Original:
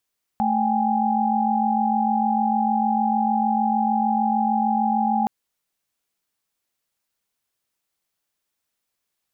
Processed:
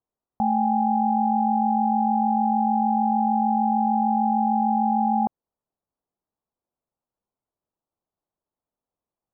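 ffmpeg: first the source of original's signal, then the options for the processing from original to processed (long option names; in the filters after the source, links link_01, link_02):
-f lavfi -i "aevalsrc='0.075*(sin(2*PI*220*t)+sin(2*PI*783.99*t)+sin(2*PI*830.61*t))':duration=4.87:sample_rate=44100"
-af "lowpass=frequency=1000:width=0.5412,lowpass=frequency=1000:width=1.3066"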